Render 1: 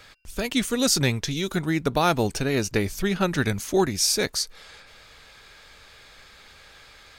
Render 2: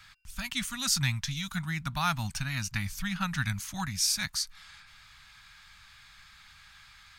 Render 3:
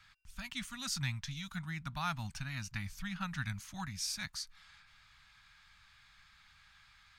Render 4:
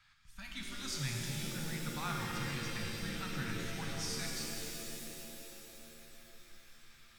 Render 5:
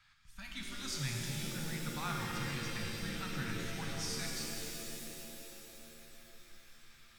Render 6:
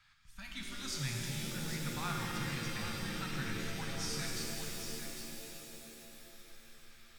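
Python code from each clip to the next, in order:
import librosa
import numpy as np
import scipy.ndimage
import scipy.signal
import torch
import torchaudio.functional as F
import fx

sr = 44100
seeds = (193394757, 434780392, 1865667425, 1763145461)

y1 = scipy.signal.sosfilt(scipy.signal.cheby1(2, 1.0, [160.0, 1100.0], 'bandstop', fs=sr, output='sos'), x)
y1 = F.gain(torch.from_numpy(y1), -4.0).numpy()
y2 = fx.high_shelf(y1, sr, hz=6900.0, db=-8.0)
y2 = F.gain(torch.from_numpy(y2), -7.5).numpy()
y3 = fx.rev_shimmer(y2, sr, seeds[0], rt60_s=3.3, semitones=7, shimmer_db=-2, drr_db=-1.0)
y3 = F.gain(torch.from_numpy(y3), -5.0).numpy()
y4 = y3
y5 = y4 + 10.0 ** (-8.5 / 20.0) * np.pad(y4, (int(803 * sr / 1000.0), 0))[:len(y4)]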